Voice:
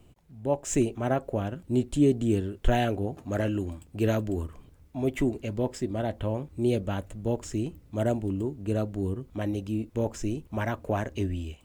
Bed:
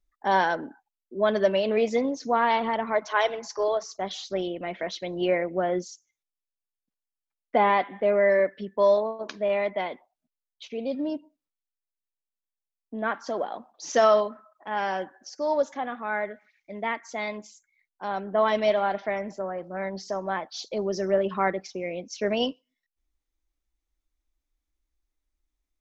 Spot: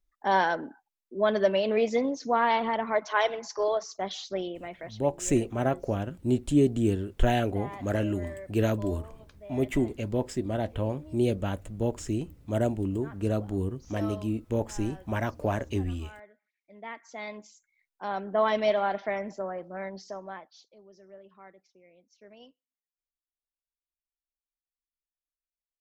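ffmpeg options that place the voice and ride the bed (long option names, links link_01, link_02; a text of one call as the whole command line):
ffmpeg -i stem1.wav -i stem2.wav -filter_complex "[0:a]adelay=4550,volume=0dB[link_01];[1:a]volume=17dB,afade=type=out:start_time=4.18:duration=0.94:silence=0.112202,afade=type=in:start_time=16.52:duration=1.45:silence=0.11885,afade=type=out:start_time=19.42:duration=1.28:silence=0.0595662[link_02];[link_01][link_02]amix=inputs=2:normalize=0" out.wav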